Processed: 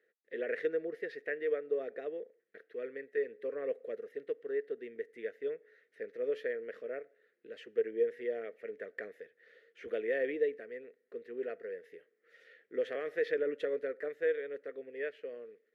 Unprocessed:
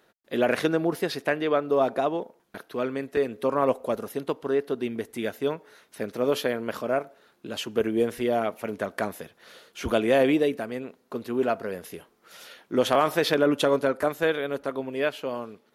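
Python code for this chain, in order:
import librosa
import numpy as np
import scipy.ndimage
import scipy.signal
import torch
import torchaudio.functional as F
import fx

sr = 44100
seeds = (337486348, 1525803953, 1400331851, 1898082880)

y = fx.double_bandpass(x, sr, hz=930.0, octaves=2.0)
y = y * librosa.db_to_amplitude(-4.0)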